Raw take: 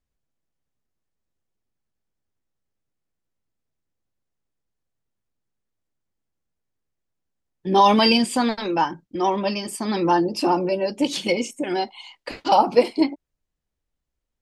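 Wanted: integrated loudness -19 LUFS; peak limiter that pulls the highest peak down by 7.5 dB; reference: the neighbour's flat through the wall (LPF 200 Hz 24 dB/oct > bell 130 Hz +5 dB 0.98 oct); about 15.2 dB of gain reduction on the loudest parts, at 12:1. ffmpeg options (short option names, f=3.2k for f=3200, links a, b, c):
-af "acompressor=threshold=-26dB:ratio=12,alimiter=limit=-23.5dB:level=0:latency=1,lowpass=f=200:w=0.5412,lowpass=f=200:w=1.3066,equalizer=f=130:t=o:w=0.98:g=5,volume=23.5dB"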